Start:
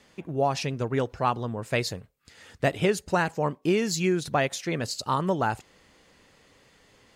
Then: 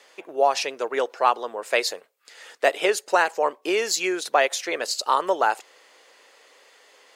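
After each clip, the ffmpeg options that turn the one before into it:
ffmpeg -i in.wav -af "highpass=frequency=430:width=0.5412,highpass=frequency=430:width=1.3066,volume=6dB" out.wav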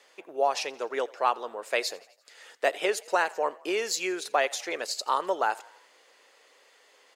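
ffmpeg -i in.wav -filter_complex "[0:a]asplit=5[link_01][link_02][link_03][link_04][link_05];[link_02]adelay=85,afreqshift=31,volume=-23dB[link_06];[link_03]adelay=170,afreqshift=62,volume=-27.6dB[link_07];[link_04]adelay=255,afreqshift=93,volume=-32.2dB[link_08];[link_05]adelay=340,afreqshift=124,volume=-36.7dB[link_09];[link_01][link_06][link_07][link_08][link_09]amix=inputs=5:normalize=0,volume=-5.5dB" out.wav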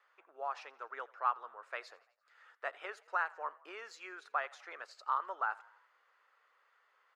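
ffmpeg -i in.wav -af "bandpass=frequency=1300:width_type=q:width=3.7:csg=0,volume=-2dB" out.wav

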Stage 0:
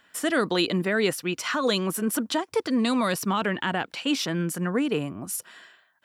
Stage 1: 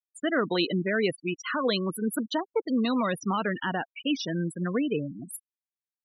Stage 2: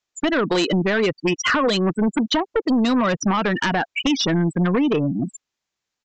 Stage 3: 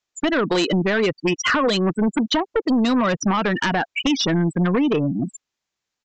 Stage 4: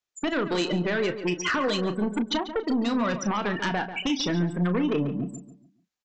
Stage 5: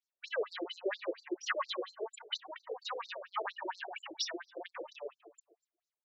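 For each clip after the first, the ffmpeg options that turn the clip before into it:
ffmpeg -i in.wav -af "afftfilt=real='re*gte(hypot(re,im),0.0708)':imag='im*gte(hypot(re,im),0.0708)':win_size=1024:overlap=0.75,volume=-2dB" out.wav
ffmpeg -i in.wav -af "acompressor=threshold=-30dB:ratio=12,aresample=16000,aeval=exprs='0.0794*sin(PI/2*2*val(0)/0.0794)':channel_layout=same,aresample=44100,volume=7.5dB" out.wav
ffmpeg -i in.wav -af anull out.wav
ffmpeg -i in.wav -filter_complex "[0:a]asplit=2[link_01][link_02];[link_02]adelay=34,volume=-10.5dB[link_03];[link_01][link_03]amix=inputs=2:normalize=0,asplit=2[link_04][link_05];[link_05]adelay=141,lowpass=frequency=2500:poles=1,volume=-10.5dB,asplit=2[link_06][link_07];[link_07]adelay=141,lowpass=frequency=2500:poles=1,volume=0.36,asplit=2[link_08][link_09];[link_09]adelay=141,lowpass=frequency=2500:poles=1,volume=0.36,asplit=2[link_10][link_11];[link_11]adelay=141,lowpass=frequency=2500:poles=1,volume=0.36[link_12];[link_06][link_08][link_10][link_12]amix=inputs=4:normalize=0[link_13];[link_04][link_13]amix=inputs=2:normalize=0,volume=-7dB" out.wav
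ffmpeg -i in.wav -af "afftfilt=real='re*between(b*sr/1024,470*pow(5900/470,0.5+0.5*sin(2*PI*4.3*pts/sr))/1.41,470*pow(5900/470,0.5+0.5*sin(2*PI*4.3*pts/sr))*1.41)':imag='im*between(b*sr/1024,470*pow(5900/470,0.5+0.5*sin(2*PI*4.3*pts/sr))/1.41,470*pow(5900/470,0.5+0.5*sin(2*PI*4.3*pts/sr))*1.41)':win_size=1024:overlap=0.75,volume=-2.5dB" out.wav

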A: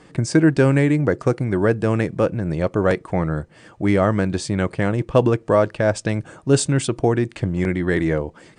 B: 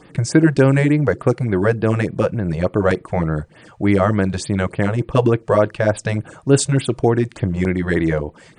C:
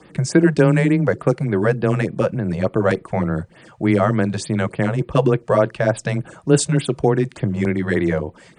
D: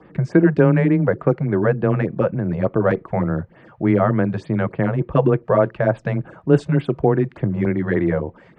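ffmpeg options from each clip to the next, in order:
ffmpeg -i in.wav -af "afftfilt=real='re*(1-between(b*sr/1024,240*pow(7300/240,0.5+0.5*sin(2*PI*3.4*pts/sr))/1.41,240*pow(7300/240,0.5+0.5*sin(2*PI*3.4*pts/sr))*1.41))':imag='im*(1-between(b*sr/1024,240*pow(7300/240,0.5+0.5*sin(2*PI*3.4*pts/sr))/1.41,240*pow(7300/240,0.5+0.5*sin(2*PI*3.4*pts/sr))*1.41))':win_size=1024:overlap=0.75,volume=2.5dB" out.wav
ffmpeg -i in.wav -af "afreqshift=14,volume=-1dB" out.wav
ffmpeg -i in.wav -af "lowpass=1800" out.wav

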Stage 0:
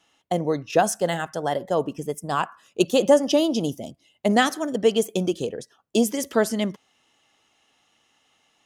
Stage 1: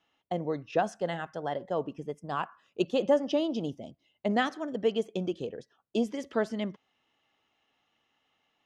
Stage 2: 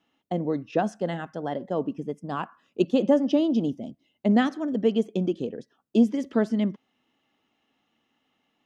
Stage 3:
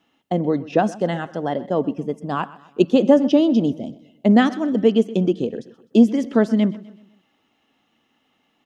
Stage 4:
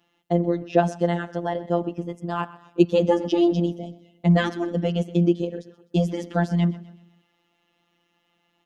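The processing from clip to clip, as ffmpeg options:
ffmpeg -i in.wav -af "lowpass=3500,volume=-8dB" out.wav
ffmpeg -i in.wav -af "equalizer=frequency=240:width_type=o:width=1.2:gain=11" out.wav
ffmpeg -i in.wav -af "aecho=1:1:127|254|381|508:0.112|0.0505|0.0227|0.0102,volume=6.5dB" out.wav
ffmpeg -i in.wav -af "afftfilt=real='hypot(re,im)*cos(PI*b)':imag='0':win_size=1024:overlap=0.75,volume=1dB" out.wav

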